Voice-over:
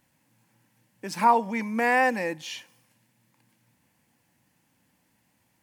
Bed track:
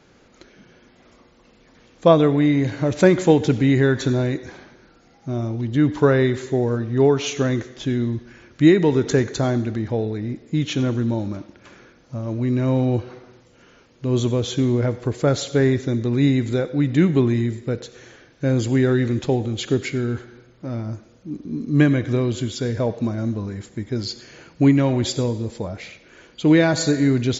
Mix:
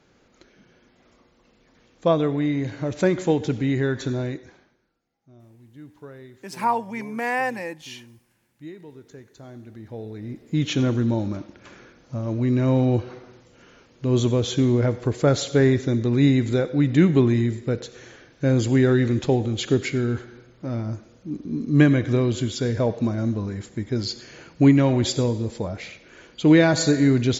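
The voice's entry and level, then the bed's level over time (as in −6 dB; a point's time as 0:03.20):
5.40 s, −2.5 dB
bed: 0:04.29 −6 dB
0:05.06 −26 dB
0:09.25 −26 dB
0:10.64 0 dB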